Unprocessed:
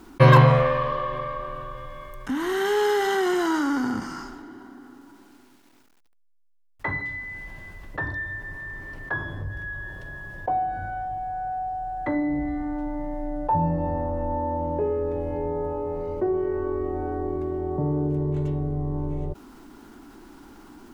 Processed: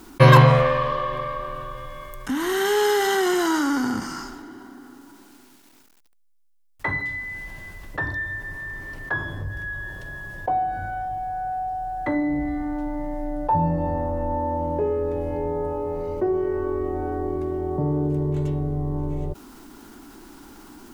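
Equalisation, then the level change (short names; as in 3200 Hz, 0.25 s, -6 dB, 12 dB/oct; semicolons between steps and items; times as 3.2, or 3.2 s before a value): high shelf 4200 Hz +8.5 dB; +1.5 dB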